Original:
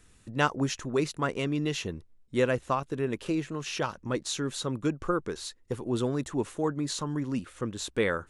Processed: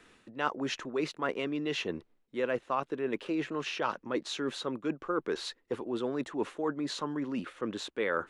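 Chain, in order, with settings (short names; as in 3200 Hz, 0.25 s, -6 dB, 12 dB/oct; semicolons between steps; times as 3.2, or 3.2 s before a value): reverse; compressor 6:1, threshold -35 dBFS, peak gain reduction 15 dB; reverse; three-band isolator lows -20 dB, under 220 Hz, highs -16 dB, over 4100 Hz; gain +7.5 dB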